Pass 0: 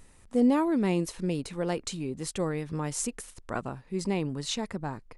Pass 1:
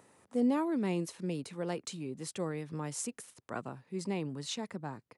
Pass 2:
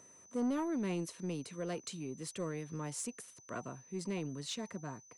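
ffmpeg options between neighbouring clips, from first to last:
-filter_complex "[0:a]highpass=f=110:w=0.5412,highpass=f=110:w=1.3066,acrossover=split=310|1400[s0][s1][s2];[s1]acompressor=mode=upward:threshold=0.00282:ratio=2.5[s3];[s0][s3][s2]amix=inputs=3:normalize=0,volume=0.501"
-af "asuperstop=centerf=820:order=20:qfactor=6.4,asoftclip=type=tanh:threshold=0.0473,aeval=exprs='val(0)+0.00158*sin(2*PI*6100*n/s)':c=same,volume=0.794"

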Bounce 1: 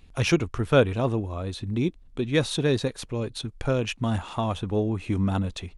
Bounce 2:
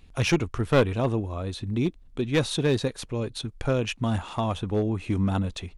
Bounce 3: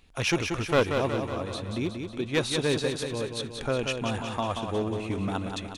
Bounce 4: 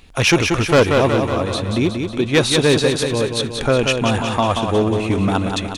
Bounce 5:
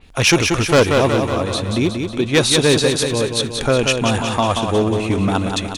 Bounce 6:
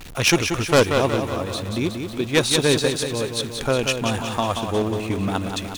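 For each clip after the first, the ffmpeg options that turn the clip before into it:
-af "aeval=exprs='clip(val(0),-1,0.119)':c=same"
-filter_complex "[0:a]lowshelf=f=280:g=-9,asplit=2[s0][s1];[s1]aecho=0:1:183|366|549|732|915|1098|1281|1464:0.501|0.291|0.169|0.0978|0.0567|0.0329|0.0191|0.0111[s2];[s0][s2]amix=inputs=2:normalize=0"
-af "aeval=exprs='0.335*sin(PI/2*1.78*val(0)/0.335)':c=same,volume=1.5"
-af "adynamicequalizer=threshold=0.0316:dfrequency=4000:dqfactor=0.7:tfrequency=4000:tqfactor=0.7:attack=5:release=100:ratio=0.375:range=2.5:mode=boostabove:tftype=highshelf"
-af "aeval=exprs='val(0)+0.5*0.0631*sgn(val(0))':c=same,aeval=exprs='0.75*(cos(1*acos(clip(val(0)/0.75,-1,1)))-cos(1*PI/2))+0.168*(cos(3*acos(clip(val(0)/0.75,-1,1)))-cos(3*PI/2))':c=same"

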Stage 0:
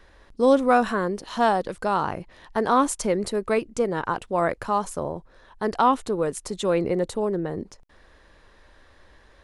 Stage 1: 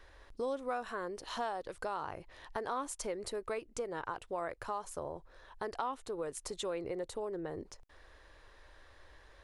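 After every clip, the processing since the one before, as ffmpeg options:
-af "equalizer=f=200:t=o:w=0.82:g=-12,acompressor=threshold=0.02:ratio=3,volume=0.631"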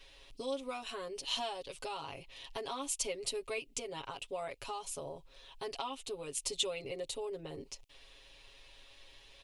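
-af "highshelf=f=2100:t=q:w=3:g=8.5,aecho=1:1:7.3:0.98,volume=0.562"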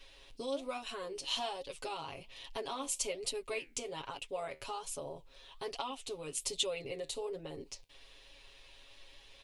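-af "flanger=delay=3.4:depth=9.5:regen=72:speed=1.2:shape=sinusoidal,volume=1.68"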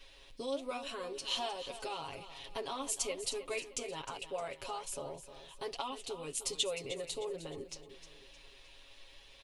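-af "aecho=1:1:308|616|924|1232:0.237|0.0996|0.0418|0.0176"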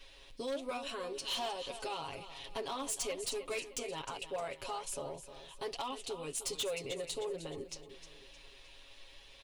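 -af "asoftclip=type=hard:threshold=0.0224,volume=1.12"

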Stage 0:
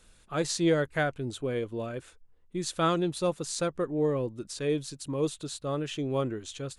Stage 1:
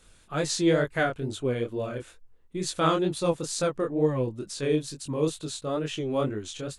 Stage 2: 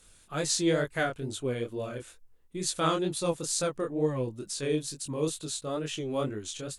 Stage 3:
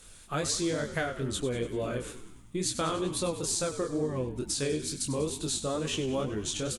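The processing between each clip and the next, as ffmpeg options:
-af "flanger=delay=19:depth=7.4:speed=2.2,volume=1.88"
-af "aemphasis=mode=production:type=cd,volume=0.668"
-filter_complex "[0:a]acompressor=threshold=0.02:ratio=6,asplit=2[s0][s1];[s1]asplit=7[s2][s3][s4][s5][s6][s7][s8];[s2]adelay=97,afreqshift=-59,volume=0.251[s9];[s3]adelay=194,afreqshift=-118,volume=0.155[s10];[s4]adelay=291,afreqshift=-177,volume=0.0966[s11];[s5]adelay=388,afreqshift=-236,volume=0.0596[s12];[s6]adelay=485,afreqshift=-295,volume=0.0372[s13];[s7]adelay=582,afreqshift=-354,volume=0.0229[s14];[s8]adelay=679,afreqshift=-413,volume=0.0143[s15];[s9][s10][s11][s12][s13][s14][s15]amix=inputs=7:normalize=0[s16];[s0][s16]amix=inputs=2:normalize=0,volume=2"

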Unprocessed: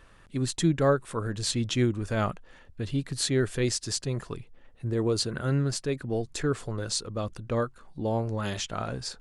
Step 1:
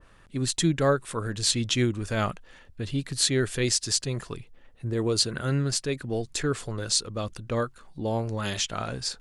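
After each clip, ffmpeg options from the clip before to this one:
-af "adynamicequalizer=threshold=0.00631:dfrequency=1700:dqfactor=0.7:tfrequency=1700:tqfactor=0.7:attack=5:release=100:ratio=0.375:range=3:mode=boostabove:tftype=highshelf"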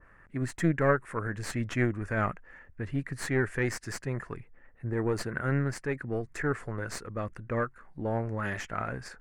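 -af "aeval=exprs='0.531*(cos(1*acos(clip(val(0)/0.531,-1,1)))-cos(1*PI/2))+0.075*(cos(4*acos(clip(val(0)/0.531,-1,1)))-cos(4*PI/2))':c=same,highshelf=f=2600:t=q:w=3:g=-11.5,volume=0.668"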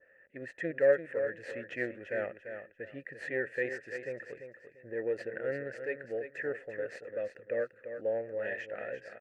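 -filter_complex "[0:a]asplit=3[s0][s1][s2];[s0]bandpass=f=530:t=q:w=8,volume=1[s3];[s1]bandpass=f=1840:t=q:w=8,volume=0.501[s4];[s2]bandpass=f=2480:t=q:w=8,volume=0.355[s5];[s3][s4][s5]amix=inputs=3:normalize=0,asplit=2[s6][s7];[s7]aecho=0:1:342|684|1026:0.355|0.0887|0.0222[s8];[s6][s8]amix=inputs=2:normalize=0,volume=2.11"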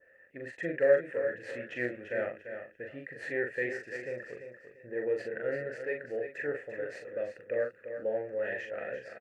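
-filter_complex "[0:a]asplit=2[s0][s1];[s1]adelay=41,volume=0.631[s2];[s0][s2]amix=inputs=2:normalize=0"

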